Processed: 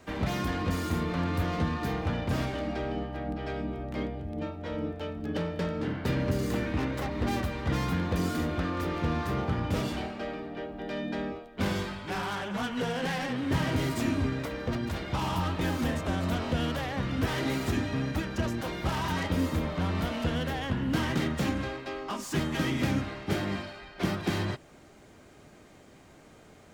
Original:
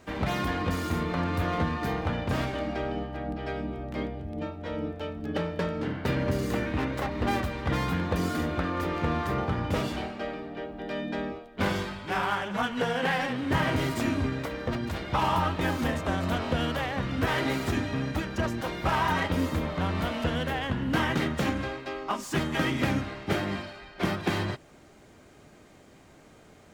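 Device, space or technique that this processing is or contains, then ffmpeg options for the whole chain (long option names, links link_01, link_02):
one-band saturation: -filter_complex "[0:a]acrossover=split=380|3800[link_01][link_02][link_03];[link_02]asoftclip=type=tanh:threshold=-32dB[link_04];[link_01][link_04][link_03]amix=inputs=3:normalize=0"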